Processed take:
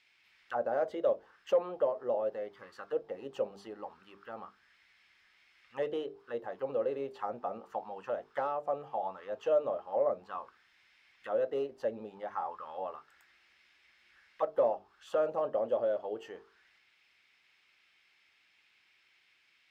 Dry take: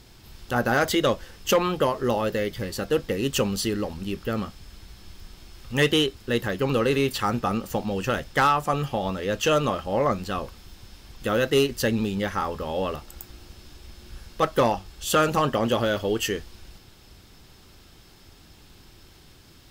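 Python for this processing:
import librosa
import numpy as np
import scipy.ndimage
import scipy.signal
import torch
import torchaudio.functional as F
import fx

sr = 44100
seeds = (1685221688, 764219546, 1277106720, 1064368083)

y = fx.auto_wah(x, sr, base_hz=590.0, top_hz=2400.0, q=3.9, full_db=-20.5, direction='down')
y = fx.hum_notches(y, sr, base_hz=50, count=9)
y = F.gain(torch.from_numpy(y), -2.5).numpy()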